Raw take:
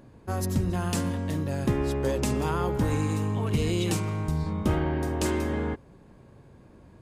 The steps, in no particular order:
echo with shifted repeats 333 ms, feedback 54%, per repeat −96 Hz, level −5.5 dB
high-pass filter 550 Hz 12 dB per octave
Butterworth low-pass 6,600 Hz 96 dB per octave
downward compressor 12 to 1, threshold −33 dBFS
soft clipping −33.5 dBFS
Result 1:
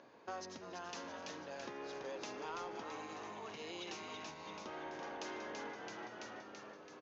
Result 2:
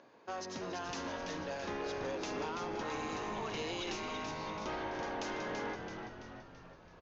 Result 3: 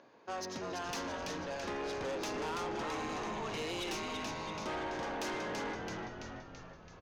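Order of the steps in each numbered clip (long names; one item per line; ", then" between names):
echo with shifted repeats, then downward compressor, then high-pass filter, then soft clipping, then Butterworth low-pass
high-pass filter, then downward compressor, then soft clipping, then Butterworth low-pass, then echo with shifted repeats
high-pass filter, then echo with shifted repeats, then Butterworth low-pass, then soft clipping, then downward compressor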